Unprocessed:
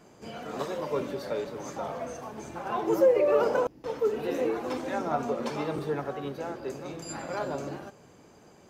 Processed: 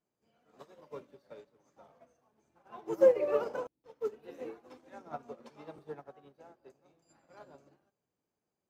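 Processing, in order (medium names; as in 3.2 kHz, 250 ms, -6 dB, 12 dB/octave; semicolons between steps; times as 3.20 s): 5.63–7.14 s: peaking EQ 740 Hz +5 dB 0.74 oct; upward expansion 2.5:1, over -39 dBFS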